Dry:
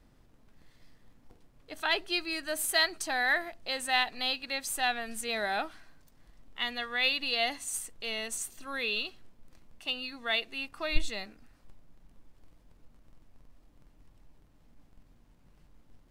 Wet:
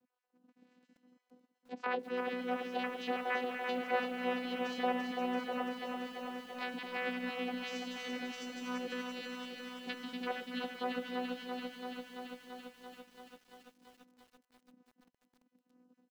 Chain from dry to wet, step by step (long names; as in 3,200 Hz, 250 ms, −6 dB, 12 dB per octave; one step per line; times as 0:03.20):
time-frequency cells dropped at random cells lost 34%
noise gate −58 dBFS, range −9 dB
channel vocoder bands 8, saw 249 Hz
pitch-shifted copies added −5 semitones −16 dB
delay with a high-pass on its return 240 ms, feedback 63%, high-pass 1,600 Hz, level −7.5 dB
treble cut that deepens with the level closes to 1,800 Hz, closed at −31.5 dBFS
feedback echo at a low word length 337 ms, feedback 80%, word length 10 bits, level −5 dB
level −3 dB